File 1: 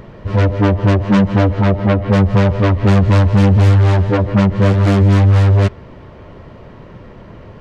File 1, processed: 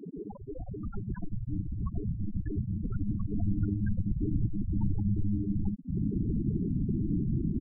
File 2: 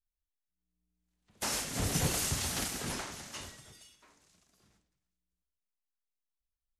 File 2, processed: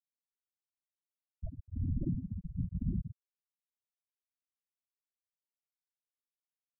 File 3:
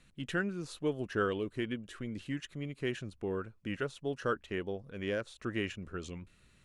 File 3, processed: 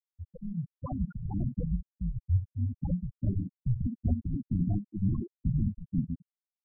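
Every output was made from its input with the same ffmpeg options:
-af "aecho=1:1:25|71:0.282|0.237,acompressor=threshold=-28dB:ratio=4,highpass=frequency=330:width_type=q:width=0.5412,highpass=frequency=330:width_type=q:width=1.307,lowpass=frequency=2000:width_type=q:width=0.5176,lowpass=frequency=2000:width_type=q:width=0.7071,lowpass=frequency=2000:width_type=q:width=1.932,afreqshift=-190,bandreject=frequency=1200:width=6,aeval=exprs='(mod(47.3*val(0)+1,2)-1)/47.3':channel_layout=same,bandreject=frequency=212.6:width_type=h:width=4,bandreject=frequency=425.2:width_type=h:width=4,bandreject=frequency=637.8:width_type=h:width=4,bandreject=frequency=850.4:width_type=h:width=4,bandreject=frequency=1063:width_type=h:width=4,bandreject=frequency=1275.6:width_type=h:width=4,bandreject=frequency=1488.2:width_type=h:width=4,bandreject=frequency=1700.8:width_type=h:width=4,bandreject=frequency=1913.4:width_type=h:width=4,bandreject=frequency=2126:width_type=h:width=4,bandreject=frequency=2338.6:width_type=h:width=4,bandreject=frequency=2551.2:width_type=h:width=4,bandreject=frequency=2763.8:width_type=h:width=4,bandreject=frequency=2976.4:width_type=h:width=4,bandreject=frequency=3189:width_type=h:width=4,bandreject=frequency=3401.6:width_type=h:width=4,bandreject=frequency=3614.2:width_type=h:width=4,bandreject=frequency=3826.8:width_type=h:width=4,bandreject=frequency=4039.4:width_type=h:width=4,bandreject=frequency=4252:width_type=h:width=4,bandreject=frequency=4464.6:width_type=h:width=4,bandreject=frequency=4677.2:width_type=h:width=4,bandreject=frequency=4889.8:width_type=h:width=4,bandreject=frequency=5102.4:width_type=h:width=4,bandreject=frequency=5315:width_type=h:width=4,bandreject=frequency=5527.6:width_type=h:width=4,bandreject=frequency=5740.2:width_type=h:width=4,bandreject=frequency=5952.8:width_type=h:width=4,asubboost=boost=5:cutoff=220,afftfilt=real='re*gte(hypot(re,im),0.0501)':imag='im*gte(hypot(re,im),0.0501)':win_size=1024:overlap=0.75,volume=8dB"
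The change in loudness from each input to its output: −20.0, −5.0, +4.0 LU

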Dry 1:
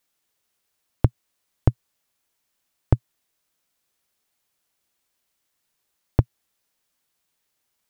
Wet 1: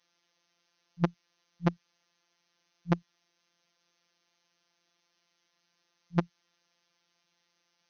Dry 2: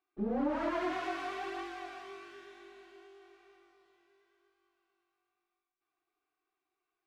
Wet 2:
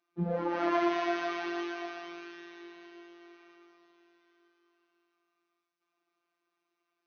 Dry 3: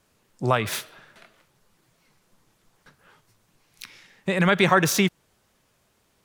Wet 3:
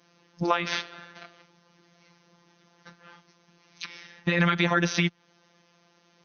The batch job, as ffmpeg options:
-filter_complex "[0:a]afftfilt=real='re*between(b*sr/4096,130,6400)':imag='im*between(b*sr/4096,130,6400)':win_size=4096:overlap=0.75,acrossover=split=970|4200[link_01][link_02][link_03];[link_01]acompressor=threshold=-31dB:ratio=4[link_04];[link_02]acompressor=threshold=-30dB:ratio=4[link_05];[link_03]acompressor=threshold=-49dB:ratio=4[link_06];[link_04][link_05][link_06]amix=inputs=3:normalize=0,afftfilt=real='hypot(re,im)*cos(PI*b)':imag='0':win_size=1024:overlap=0.75,volume=8.5dB"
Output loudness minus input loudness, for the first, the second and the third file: −7.5, +4.0, −4.0 LU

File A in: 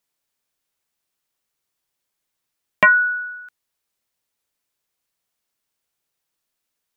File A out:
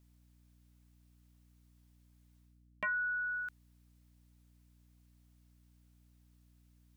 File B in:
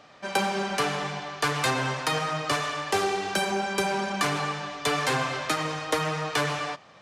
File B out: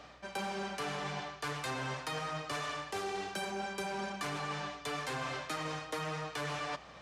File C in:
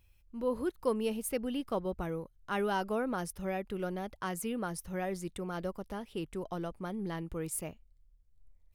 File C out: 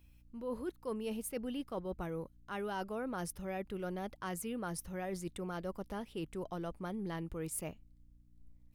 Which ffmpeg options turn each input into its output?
-af "areverse,acompressor=threshold=-36dB:ratio=6,areverse,aeval=exprs='val(0)+0.000631*(sin(2*PI*60*n/s)+sin(2*PI*2*60*n/s)/2+sin(2*PI*3*60*n/s)/3+sin(2*PI*4*60*n/s)/4+sin(2*PI*5*60*n/s)/5)':channel_layout=same"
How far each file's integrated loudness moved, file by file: −19.5, −11.0, −4.5 LU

